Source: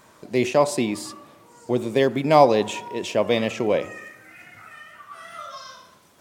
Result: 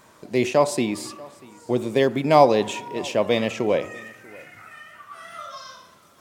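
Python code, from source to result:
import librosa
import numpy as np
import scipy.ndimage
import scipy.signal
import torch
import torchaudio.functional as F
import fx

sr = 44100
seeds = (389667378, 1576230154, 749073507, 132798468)

y = x + 10.0 ** (-23.5 / 20.0) * np.pad(x, (int(639 * sr / 1000.0), 0))[:len(x)]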